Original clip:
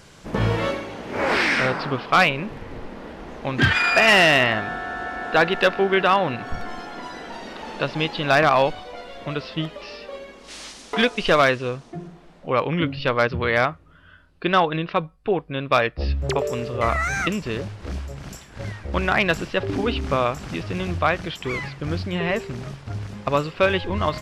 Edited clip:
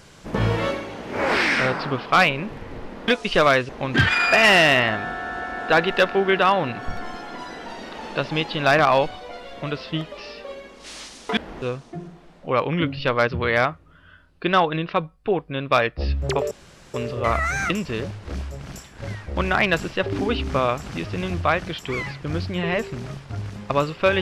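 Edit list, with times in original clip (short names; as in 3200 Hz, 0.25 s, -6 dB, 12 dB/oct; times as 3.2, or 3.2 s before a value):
3.08–3.33 swap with 11.01–11.62
16.51 insert room tone 0.43 s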